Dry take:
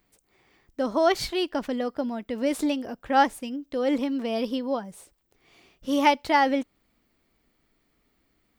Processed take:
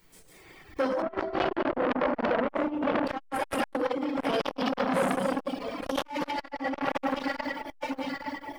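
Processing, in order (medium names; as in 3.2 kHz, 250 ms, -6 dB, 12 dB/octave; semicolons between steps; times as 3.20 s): backward echo that repeats 107 ms, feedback 66%, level -1 dB; overload inside the chain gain 13.5 dB; band-stop 830 Hz, Q 15; echo whose repeats swap between lows and highs 431 ms, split 890 Hz, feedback 69%, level -11 dB; reverberation RT60 1.1 s, pre-delay 10 ms, DRR -7 dB; reverb removal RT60 1.6 s; bit crusher 11-bit; 1.02–3.07 s: low-pass 1.5 kHz 12 dB/octave; compressor with a negative ratio -21 dBFS, ratio -1; transformer saturation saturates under 1.6 kHz; trim -3.5 dB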